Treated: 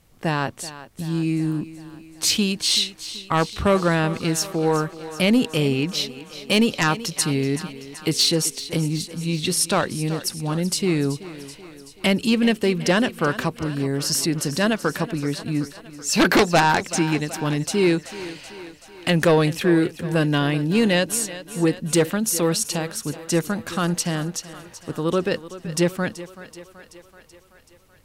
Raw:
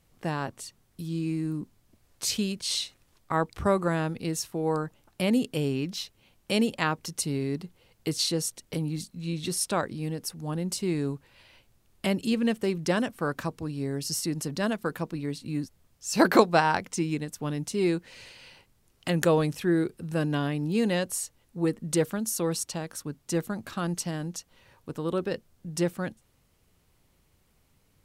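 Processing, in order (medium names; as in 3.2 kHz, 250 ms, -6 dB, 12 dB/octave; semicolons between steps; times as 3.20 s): dynamic bell 2.8 kHz, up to +5 dB, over -45 dBFS, Q 0.77; sine folder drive 12 dB, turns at -2 dBFS; on a send: thinning echo 380 ms, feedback 64%, high-pass 210 Hz, level -14.5 dB; on the sum: trim -8.5 dB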